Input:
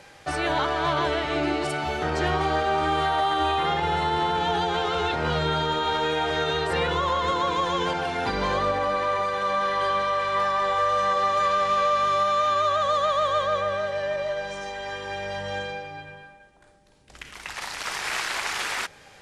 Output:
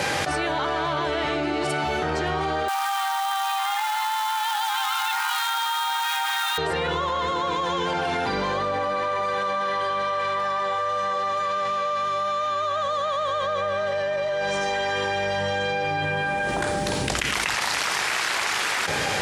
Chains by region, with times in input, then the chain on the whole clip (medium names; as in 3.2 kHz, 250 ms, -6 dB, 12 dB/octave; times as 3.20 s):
2.68–6.58 s: companded quantiser 4-bit + brick-wall FIR high-pass 740 Hz
whole clip: high-pass 78 Hz; level flattener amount 100%; trim -4.5 dB